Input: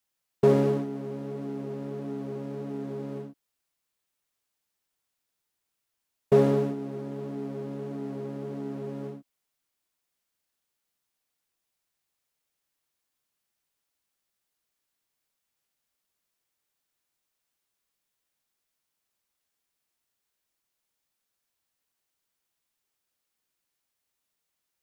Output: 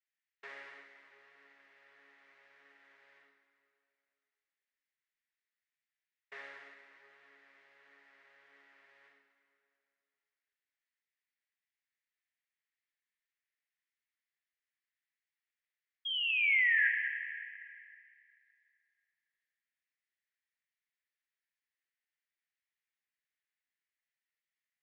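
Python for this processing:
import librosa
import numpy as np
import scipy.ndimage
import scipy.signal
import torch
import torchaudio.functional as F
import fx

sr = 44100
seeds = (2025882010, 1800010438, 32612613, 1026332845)

p1 = fx.spec_paint(x, sr, seeds[0], shape='fall', start_s=16.05, length_s=0.83, low_hz=1600.0, high_hz=3300.0, level_db=-24.0)
p2 = fx.ladder_bandpass(p1, sr, hz=2100.0, resonance_pct=65)
p3 = fx.room_flutter(p2, sr, wall_m=9.3, rt60_s=0.27)
p4 = fx.rev_plate(p3, sr, seeds[1], rt60_s=2.6, hf_ratio=0.8, predelay_ms=0, drr_db=4.0)
p5 = fx.over_compress(p4, sr, threshold_db=-27.0, ratio=-0.5)
p6 = p4 + (p5 * librosa.db_to_amplitude(0.0))
y = p6 * librosa.db_to_amplitude(-6.5)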